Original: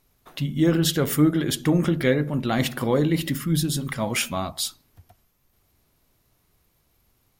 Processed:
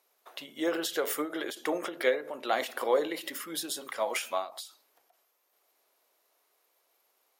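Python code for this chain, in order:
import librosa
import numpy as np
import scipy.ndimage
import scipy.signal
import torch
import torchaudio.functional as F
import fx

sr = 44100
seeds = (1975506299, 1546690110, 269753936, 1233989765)

y = scipy.signal.sosfilt(scipy.signal.butter(4, 490.0, 'highpass', fs=sr, output='sos'), x)
y = fx.tilt_shelf(y, sr, db=3.5, hz=700.0)
y = fx.end_taper(y, sr, db_per_s=150.0)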